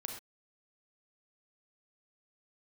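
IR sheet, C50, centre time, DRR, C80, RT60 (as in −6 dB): 4.5 dB, 27 ms, 2.5 dB, 8.0 dB, non-exponential decay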